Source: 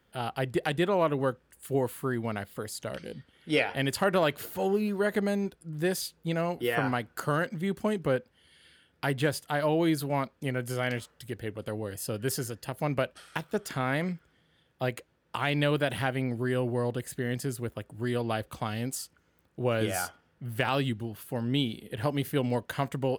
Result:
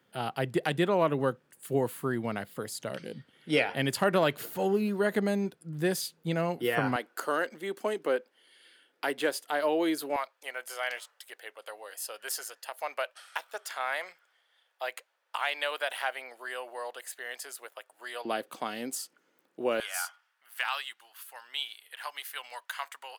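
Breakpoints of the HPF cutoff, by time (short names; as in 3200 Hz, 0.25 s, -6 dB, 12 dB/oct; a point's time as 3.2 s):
HPF 24 dB/oct
120 Hz
from 6.96 s 310 Hz
from 10.16 s 650 Hz
from 18.25 s 250 Hz
from 19.8 s 970 Hz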